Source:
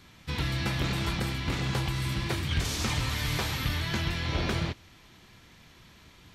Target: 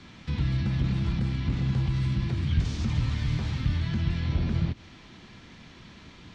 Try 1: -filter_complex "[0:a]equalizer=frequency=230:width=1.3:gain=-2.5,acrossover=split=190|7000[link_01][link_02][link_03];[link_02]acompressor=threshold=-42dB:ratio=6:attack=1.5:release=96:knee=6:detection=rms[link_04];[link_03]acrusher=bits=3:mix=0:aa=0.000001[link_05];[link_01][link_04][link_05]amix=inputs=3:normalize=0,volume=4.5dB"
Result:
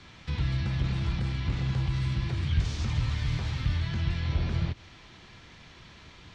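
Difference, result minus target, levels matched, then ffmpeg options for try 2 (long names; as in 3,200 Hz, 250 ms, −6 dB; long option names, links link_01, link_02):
250 Hz band −3.5 dB
-filter_complex "[0:a]equalizer=frequency=230:width=1.3:gain=6,acrossover=split=190|7000[link_01][link_02][link_03];[link_02]acompressor=threshold=-42dB:ratio=6:attack=1.5:release=96:knee=6:detection=rms[link_04];[link_03]acrusher=bits=3:mix=0:aa=0.000001[link_05];[link_01][link_04][link_05]amix=inputs=3:normalize=0,volume=4.5dB"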